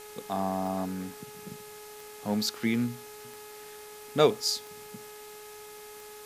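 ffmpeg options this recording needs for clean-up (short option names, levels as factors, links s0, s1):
-af "adeclick=t=4,bandreject=f=421.4:t=h:w=4,bandreject=f=842.8:t=h:w=4,bandreject=f=1264.2:t=h:w=4,bandreject=f=1685.6:t=h:w=4,bandreject=f=2107:t=h:w=4,bandreject=f=2528.4:t=h:w=4,afwtdn=0.0035"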